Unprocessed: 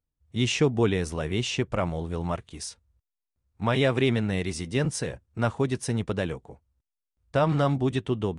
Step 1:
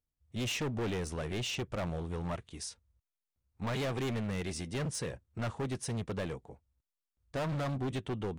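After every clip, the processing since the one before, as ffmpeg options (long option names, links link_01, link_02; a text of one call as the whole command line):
ffmpeg -i in.wav -af "asoftclip=type=hard:threshold=-26.5dB,volume=-5dB" out.wav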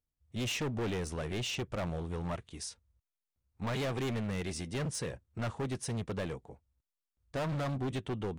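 ffmpeg -i in.wav -af anull out.wav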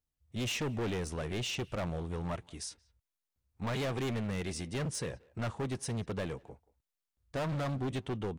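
ffmpeg -i in.wav -filter_complex "[0:a]asplit=2[link_01][link_02];[link_02]adelay=180,highpass=300,lowpass=3400,asoftclip=type=hard:threshold=-39.5dB,volume=-21dB[link_03];[link_01][link_03]amix=inputs=2:normalize=0" out.wav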